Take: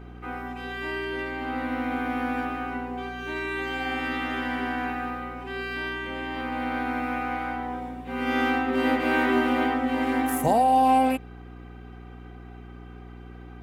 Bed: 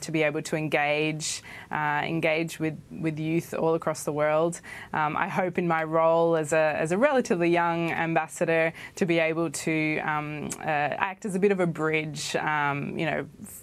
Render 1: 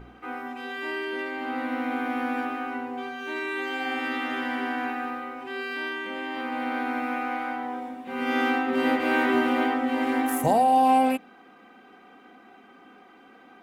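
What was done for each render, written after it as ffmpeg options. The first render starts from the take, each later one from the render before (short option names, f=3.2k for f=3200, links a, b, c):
-af "bandreject=f=60:t=h:w=4,bandreject=f=120:t=h:w=4,bandreject=f=180:t=h:w=4,bandreject=f=240:t=h:w=4,bandreject=f=300:t=h:w=4,bandreject=f=360:t=h:w=4,bandreject=f=420:t=h:w=4"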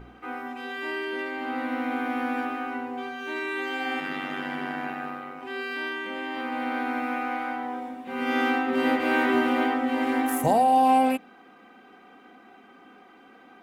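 -filter_complex "[0:a]asettb=1/sr,asplit=3[a][b][c];[a]atrim=end=4.004[d];[b]atrim=start=4:end=5.43,asetpts=PTS-STARTPTS,afade=t=in:d=0.004:c=qsin,afade=t=out:st=1.426:d=0.004:c=qsin,tremolo=f=96:d=0.621[e];[c]atrim=start=5.426[f];[d][e]acrossfade=d=0.004:c1=hsin:c2=qsin[g];[g][f]acrossfade=d=0.004:c1=qsin:c2=hsin"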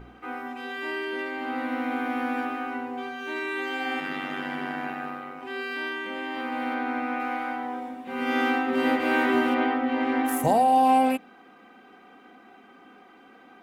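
-filter_complex "[0:a]asettb=1/sr,asplit=3[a][b][c];[a]atrim=end=6.744[d];[b]atrim=start=6.74:end=7.2,asetpts=PTS-STARTPTS,afade=t=in:d=0.004:c=qsin,afade=t=out:st=0.456:d=0.004:c=qsin,lowpass=f=3.8k:p=1[e];[c]atrim=start=7.196[f];[d][e]acrossfade=d=0.004:c1=hsin:c2=qsin[g];[g][f]acrossfade=d=0.004:c1=qsin:c2=hsin,asettb=1/sr,asplit=3[h][i][j];[h]atrim=end=9.544[k];[i]atrim=start=9.54:end=10.25,asetpts=PTS-STARTPTS,afade=t=in:d=0.004:c=qsin,afade=t=out:st=0.706:d=0.004:c=qsin,lowpass=3.9k[l];[j]atrim=start=10.246[m];[k][l]acrossfade=d=0.004:c1=hsin:c2=qsin[n];[n][m]acrossfade=d=0.004:c1=qsin:c2=hsin"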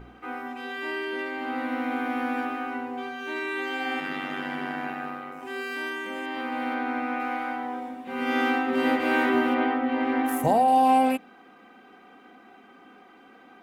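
-filter_complex "[0:a]asettb=1/sr,asplit=3[a][b][c];[a]atrim=end=5.324[d];[b]atrim=start=5.32:end=6.26,asetpts=PTS-STARTPTS,afade=t=in:d=0.004:c=qsin,afade=t=out:st=0.936:d=0.004:c=qsin,highshelf=f=5.4k:t=q:w=1.5:g=7[e];[c]atrim=start=6.256[f];[d][e]acrossfade=d=0.004:c1=hsin:c2=qsin[g];[g][f]acrossfade=d=0.004:c1=qsin:c2=hsin,asettb=1/sr,asplit=3[h][i][j];[h]atrim=end=9.294[k];[i]atrim=start=9.29:end=10.68,asetpts=PTS-STARTPTS,afade=t=in:d=0.004:c=qsin,afade=t=out:st=1.386:d=0.004:c=qsin,equalizer=f=7.7k:t=o:w=2:g=-4.5[l];[j]atrim=start=10.676[m];[k][l]acrossfade=d=0.004:c1=hsin:c2=qsin[n];[n][m]acrossfade=d=0.004:c1=qsin:c2=hsin"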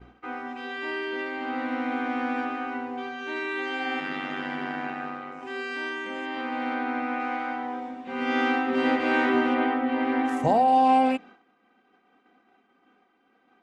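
-af "agate=range=-33dB:threshold=-42dB:ratio=3:detection=peak,lowpass=f=7k:w=0.5412,lowpass=f=7k:w=1.3066"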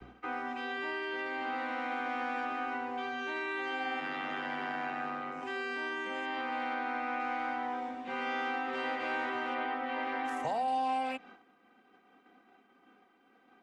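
-filter_complex "[0:a]acrossover=split=150|410|1100|3900[a][b][c][d][e];[a]acompressor=threshold=-55dB:ratio=4[f];[b]acompressor=threshold=-41dB:ratio=4[g];[c]acompressor=threshold=-35dB:ratio=4[h];[d]acompressor=threshold=-40dB:ratio=4[i];[e]acompressor=threshold=-57dB:ratio=4[j];[f][g][h][i][j]amix=inputs=5:normalize=0,acrossover=split=110|540|2000[k][l][m][n];[l]alimiter=level_in=15dB:limit=-24dB:level=0:latency=1:release=130,volume=-15dB[o];[k][o][m][n]amix=inputs=4:normalize=0"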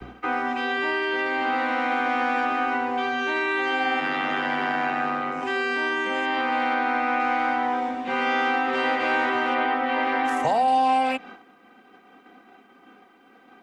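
-af "volume=11.5dB"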